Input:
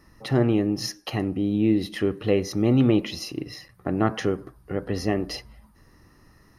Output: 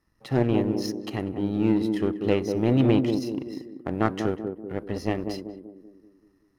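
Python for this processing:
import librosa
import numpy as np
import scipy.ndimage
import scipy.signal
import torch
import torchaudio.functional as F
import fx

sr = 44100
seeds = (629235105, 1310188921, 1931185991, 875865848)

p1 = fx.power_curve(x, sr, exponent=1.4)
p2 = p1 + fx.echo_banded(p1, sr, ms=192, feedback_pct=53, hz=300.0, wet_db=-4.0, dry=0)
y = p2 * 10.0 ** (1.0 / 20.0)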